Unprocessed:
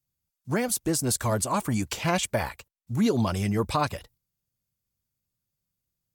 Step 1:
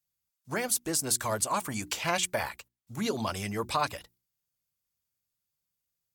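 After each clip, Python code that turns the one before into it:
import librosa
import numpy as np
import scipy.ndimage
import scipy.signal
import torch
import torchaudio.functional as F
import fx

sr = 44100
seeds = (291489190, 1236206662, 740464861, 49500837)

y = fx.low_shelf(x, sr, hz=450.0, db=-11.0)
y = fx.hum_notches(y, sr, base_hz=60, count=6)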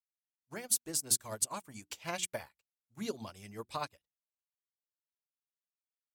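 y = fx.dynamic_eq(x, sr, hz=1200.0, q=0.79, threshold_db=-42.0, ratio=4.0, max_db=-4)
y = fx.upward_expand(y, sr, threshold_db=-50.0, expansion=2.5)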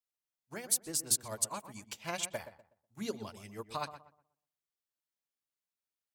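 y = fx.echo_filtered(x, sr, ms=123, feedback_pct=30, hz=1600.0, wet_db=-11)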